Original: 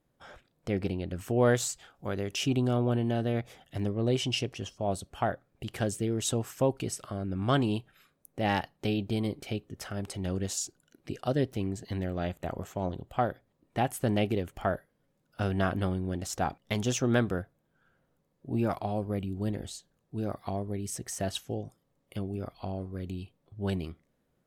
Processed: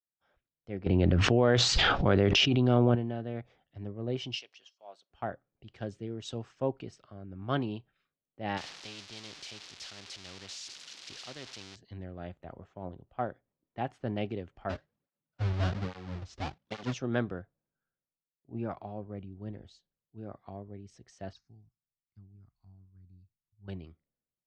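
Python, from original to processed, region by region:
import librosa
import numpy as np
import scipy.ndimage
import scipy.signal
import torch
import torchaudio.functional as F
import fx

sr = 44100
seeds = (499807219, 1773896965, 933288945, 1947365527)

y = fx.chain(x, sr, fx.lowpass(hz=4500.0, slope=12),
    fx.env_flatten(amount_pct=100), at=(0.86, 2.95))
y = fx.chain(y, sr, fx.highpass(hz=820.0, slope=12),
    fx.quant_float(bits=4), at=(4.35, 5.1))
y = fx.chain(y, sr, fx.crossing_spikes(level_db=-21.5),
    fx.spectral_comp(ratio=2.0), at=(8.57, 11.76))
y = fx.chain(y, sr, fx.halfwave_hold(),
    fx.flanger_cancel(hz=1.2, depth_ms=6.8), at=(14.69, 16.94))
y = fx.chain(y, sr, fx.ladder_lowpass(hz=5500.0, resonance_pct=55),
    fx.bass_treble(bass_db=8, treble_db=9),
    fx.fixed_phaser(hz=1300.0, stages=4), at=(21.33, 23.68))
y = scipy.signal.sosfilt(scipy.signal.butter(4, 5200.0, 'lowpass', fs=sr, output='sos'), y)
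y = fx.band_widen(y, sr, depth_pct=70)
y = y * 10.0 ** (-7.5 / 20.0)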